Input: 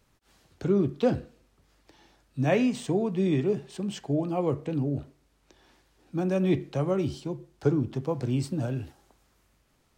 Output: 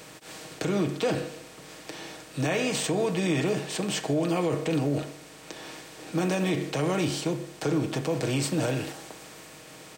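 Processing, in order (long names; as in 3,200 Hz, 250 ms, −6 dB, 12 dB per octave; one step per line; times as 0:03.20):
compressor on every frequency bin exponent 0.6
spectral tilt +2.5 dB per octave
comb filter 6.4 ms, depth 58%
brickwall limiter −19 dBFS, peak gain reduction 8.5 dB
level +1.5 dB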